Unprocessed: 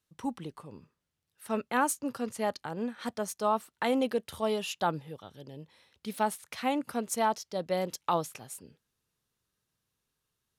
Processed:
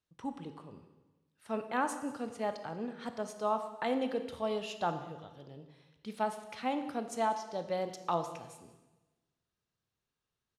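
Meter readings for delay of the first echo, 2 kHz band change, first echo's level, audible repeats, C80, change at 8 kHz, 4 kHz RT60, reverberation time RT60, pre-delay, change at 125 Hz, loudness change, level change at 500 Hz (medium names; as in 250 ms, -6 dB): 189 ms, -5.0 dB, -21.0 dB, 1, 11.0 dB, -11.0 dB, 1.1 s, 1.1 s, 20 ms, -4.5 dB, -4.0 dB, -3.5 dB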